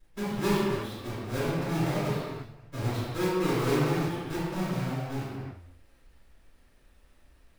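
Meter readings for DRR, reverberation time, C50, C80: -11.0 dB, no single decay rate, -4.0 dB, -1.0 dB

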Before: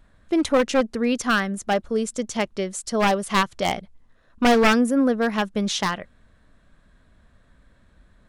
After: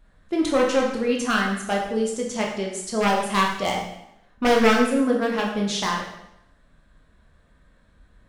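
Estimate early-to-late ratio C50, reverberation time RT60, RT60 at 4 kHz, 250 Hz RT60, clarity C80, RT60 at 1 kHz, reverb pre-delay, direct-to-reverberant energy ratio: 3.5 dB, 0.80 s, 0.75 s, 0.85 s, 6.5 dB, 0.85 s, 6 ms, -1.5 dB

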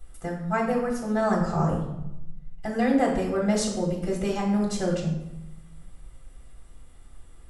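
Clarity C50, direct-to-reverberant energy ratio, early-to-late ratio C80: 4.5 dB, -2.0 dB, 8.0 dB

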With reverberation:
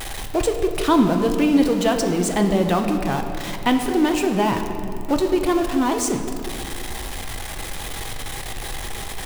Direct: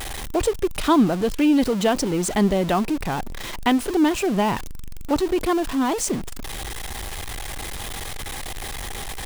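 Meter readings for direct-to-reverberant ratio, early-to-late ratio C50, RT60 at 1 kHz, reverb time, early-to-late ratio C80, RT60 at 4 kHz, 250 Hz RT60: 4.5 dB, 6.5 dB, 2.6 s, 3.0 s, 7.0 dB, 1.6 s, 3.2 s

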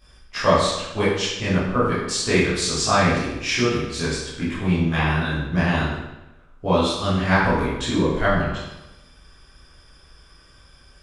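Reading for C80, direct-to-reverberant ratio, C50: 3.0 dB, -12.0 dB, 1.0 dB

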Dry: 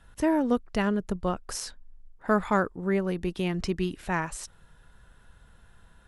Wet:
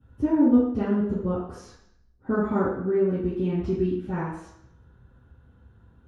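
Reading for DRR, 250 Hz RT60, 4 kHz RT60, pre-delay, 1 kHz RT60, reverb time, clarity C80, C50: -9.5 dB, 0.70 s, 0.70 s, 3 ms, 0.70 s, 0.70 s, 5.0 dB, 0.0 dB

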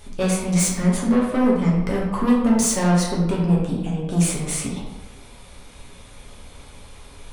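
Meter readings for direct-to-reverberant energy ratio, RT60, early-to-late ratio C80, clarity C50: -4.5 dB, 1.0 s, 5.0 dB, 2.0 dB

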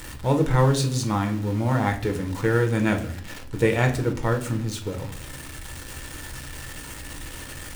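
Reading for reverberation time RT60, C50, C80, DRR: 0.55 s, 12.0 dB, 16.0 dB, 3.0 dB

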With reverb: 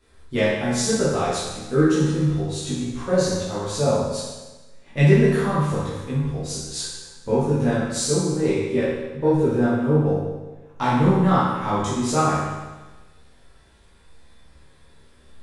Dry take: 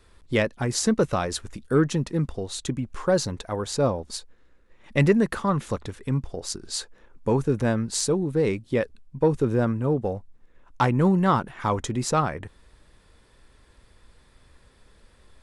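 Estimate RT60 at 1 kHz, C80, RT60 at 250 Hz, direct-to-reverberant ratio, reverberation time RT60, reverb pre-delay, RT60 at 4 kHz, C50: 1.2 s, 2.0 dB, 1.2 s, -10.5 dB, 1.2 s, 13 ms, 1.2 s, -1.0 dB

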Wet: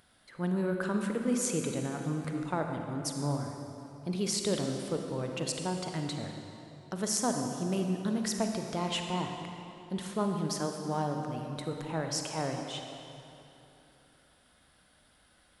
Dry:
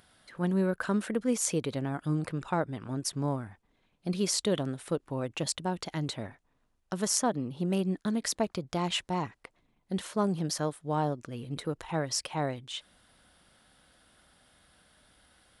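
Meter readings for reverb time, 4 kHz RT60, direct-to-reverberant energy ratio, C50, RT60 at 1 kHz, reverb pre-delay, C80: 3.0 s, 2.3 s, 3.0 dB, 3.5 dB, 3.0 s, 35 ms, 4.5 dB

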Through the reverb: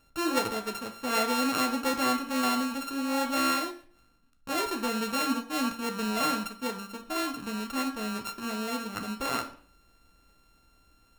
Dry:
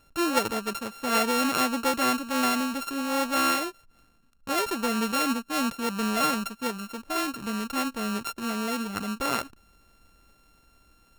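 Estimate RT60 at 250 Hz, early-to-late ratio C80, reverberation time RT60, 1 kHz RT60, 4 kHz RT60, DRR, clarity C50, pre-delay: 0.50 s, 15.0 dB, 0.50 s, 0.50 s, 0.45 s, 4.5 dB, 11.0 dB, 10 ms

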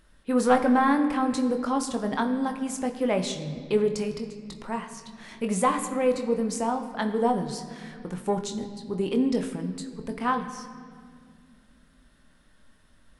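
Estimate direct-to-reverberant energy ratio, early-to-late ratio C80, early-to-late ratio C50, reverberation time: 5.0 dB, 10.5 dB, 9.5 dB, 2.1 s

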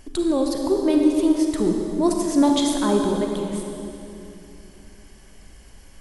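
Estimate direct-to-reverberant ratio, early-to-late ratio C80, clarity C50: 1.5 dB, 3.0 dB, 2.0 dB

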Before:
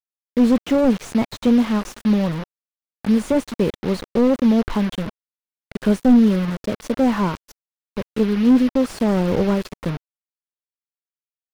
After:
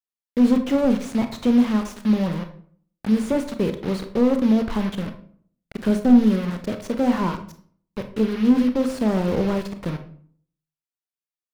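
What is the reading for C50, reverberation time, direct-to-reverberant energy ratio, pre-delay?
11.0 dB, 0.55 s, 7.0 dB, 26 ms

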